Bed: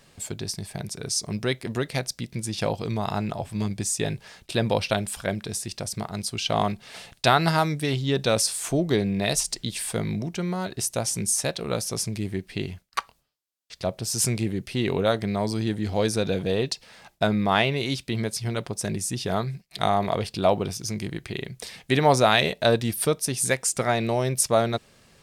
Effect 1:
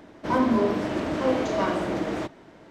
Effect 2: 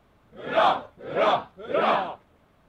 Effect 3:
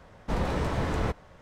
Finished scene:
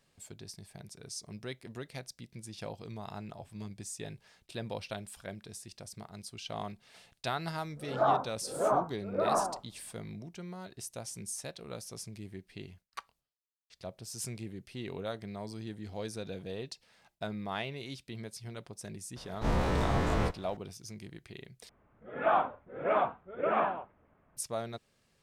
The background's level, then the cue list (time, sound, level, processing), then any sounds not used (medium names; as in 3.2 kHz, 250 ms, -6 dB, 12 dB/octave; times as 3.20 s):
bed -15.5 dB
7.44 s: add 2 -6 dB + low-pass 1.3 kHz 24 dB/octave
19.16 s: add 3 -4.5 dB + every event in the spectrogram widened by 60 ms
21.69 s: replace with 2 -6.5 dB + low-pass 2.3 kHz 24 dB/octave
not used: 1